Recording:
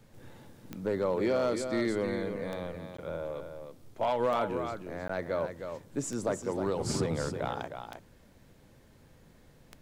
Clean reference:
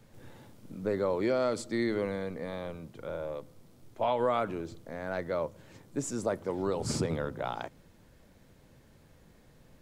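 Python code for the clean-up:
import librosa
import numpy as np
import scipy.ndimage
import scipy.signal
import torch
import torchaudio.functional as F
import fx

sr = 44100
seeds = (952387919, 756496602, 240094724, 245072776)

y = fx.fix_declip(x, sr, threshold_db=-21.5)
y = fx.fix_declick_ar(y, sr, threshold=10.0)
y = fx.fix_interpolate(y, sr, at_s=(2.97, 5.08), length_ms=14.0)
y = fx.fix_echo_inverse(y, sr, delay_ms=312, level_db=-7.5)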